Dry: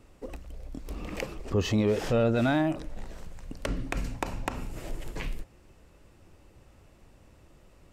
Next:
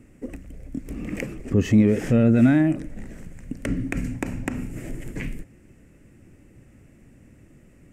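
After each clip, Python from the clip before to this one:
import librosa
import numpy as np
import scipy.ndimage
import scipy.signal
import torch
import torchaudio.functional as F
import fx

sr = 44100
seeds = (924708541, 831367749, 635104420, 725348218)

y = fx.graphic_eq(x, sr, hz=(125, 250, 1000, 2000, 4000, 8000), db=(7, 11, -9, 10, -12, 6))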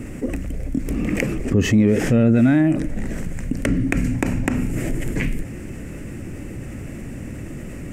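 y = fx.env_flatten(x, sr, amount_pct=50)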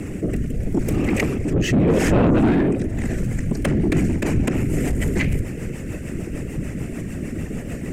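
y = fx.whisperise(x, sr, seeds[0])
y = 10.0 ** (-17.5 / 20.0) * np.tanh(y / 10.0 ** (-17.5 / 20.0))
y = fx.rotary_switch(y, sr, hz=0.8, then_hz=6.7, switch_at_s=2.72)
y = y * librosa.db_to_amplitude(6.0)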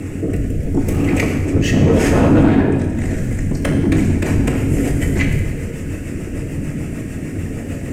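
y = fx.rev_fdn(x, sr, rt60_s=1.3, lf_ratio=1.05, hf_ratio=0.95, size_ms=64.0, drr_db=1.5)
y = y * librosa.db_to_amplitude(1.5)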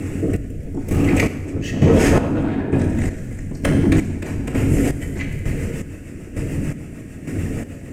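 y = fx.chopper(x, sr, hz=1.1, depth_pct=65, duty_pct=40)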